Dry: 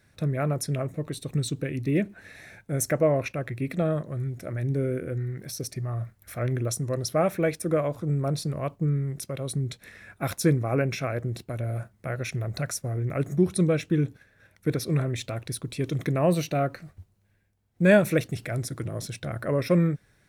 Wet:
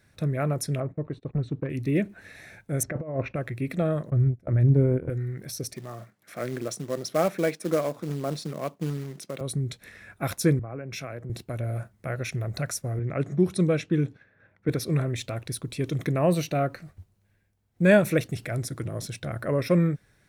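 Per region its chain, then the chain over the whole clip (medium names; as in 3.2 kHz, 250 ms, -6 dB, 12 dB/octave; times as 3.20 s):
0.80–1.70 s: hard clipper -21.5 dBFS + gate -42 dBFS, range -19 dB + low-pass 1.5 kHz
2.83–3.36 s: compressor with a negative ratio -26 dBFS, ratio -0.5 + tape spacing loss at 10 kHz 37 dB
4.10–5.10 s: gate -36 dBFS, range -14 dB + tilt EQ -3 dB/octave + transient shaper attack +1 dB, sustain -9 dB
5.74–9.41 s: high-pass 170 Hz 24 dB/octave + distance through air 51 m + short-mantissa float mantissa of 2-bit
10.59–11.30 s: compression 16:1, threshold -31 dBFS + three bands expanded up and down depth 100%
12.99–14.69 s: level-controlled noise filter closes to 1.6 kHz, open at -18 dBFS + high-pass 95 Hz
whole clip: none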